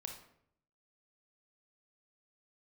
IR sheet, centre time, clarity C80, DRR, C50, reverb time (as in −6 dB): 23 ms, 10.0 dB, 3.0 dB, 6.0 dB, 0.70 s